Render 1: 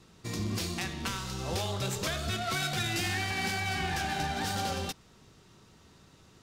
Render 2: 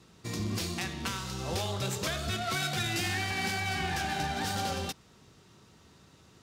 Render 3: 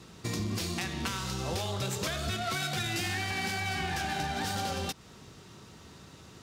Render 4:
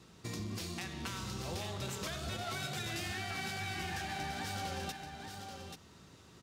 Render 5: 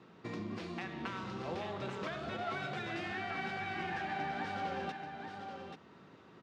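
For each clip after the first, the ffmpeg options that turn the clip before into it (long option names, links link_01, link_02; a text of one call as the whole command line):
ffmpeg -i in.wav -af "highpass=51" out.wav
ffmpeg -i in.wav -af "acompressor=threshold=-39dB:ratio=3,volume=7dB" out.wav
ffmpeg -i in.wav -af "aecho=1:1:834:0.473,volume=-7.5dB" out.wav
ffmpeg -i in.wav -af "highpass=190,lowpass=2100,volume=3.5dB" out.wav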